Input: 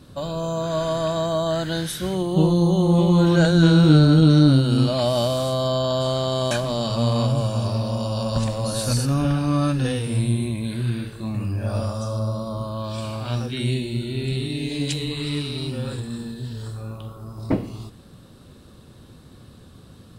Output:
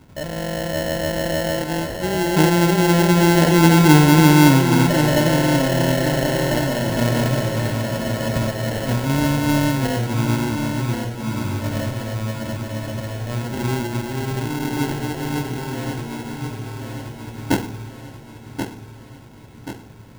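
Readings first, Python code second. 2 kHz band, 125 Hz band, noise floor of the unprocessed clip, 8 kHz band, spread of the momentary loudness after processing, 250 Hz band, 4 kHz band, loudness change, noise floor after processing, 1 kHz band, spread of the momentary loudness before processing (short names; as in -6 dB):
+10.0 dB, +0.5 dB, -47 dBFS, +7.0 dB, 18 LU, +2.5 dB, +2.0 dB, +2.5 dB, -41 dBFS, +6.5 dB, 14 LU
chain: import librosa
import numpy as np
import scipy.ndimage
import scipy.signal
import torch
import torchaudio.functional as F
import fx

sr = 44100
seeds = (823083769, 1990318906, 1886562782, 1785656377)

p1 = fx.dynamic_eq(x, sr, hz=340.0, q=1.4, threshold_db=-33.0, ratio=4.0, max_db=6)
p2 = fx.sample_hold(p1, sr, seeds[0], rate_hz=1200.0, jitter_pct=0)
p3 = p2 + fx.echo_feedback(p2, sr, ms=1082, feedback_pct=51, wet_db=-7.5, dry=0)
y = p3 * 10.0 ** (-1.0 / 20.0)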